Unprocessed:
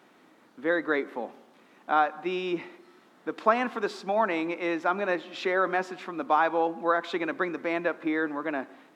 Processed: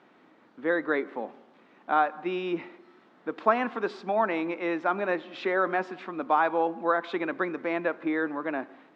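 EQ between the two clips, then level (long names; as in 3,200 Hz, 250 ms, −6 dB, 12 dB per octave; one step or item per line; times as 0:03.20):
Bessel low-pass filter 3,100 Hz, order 2
0.0 dB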